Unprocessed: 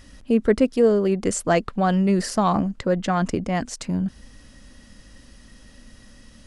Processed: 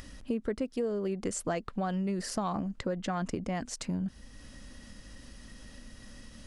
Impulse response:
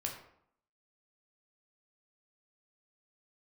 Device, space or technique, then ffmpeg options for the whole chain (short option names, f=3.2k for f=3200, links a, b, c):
upward and downward compression: -af "acompressor=mode=upward:threshold=-36dB:ratio=2.5,acompressor=threshold=-24dB:ratio=6,volume=-5dB"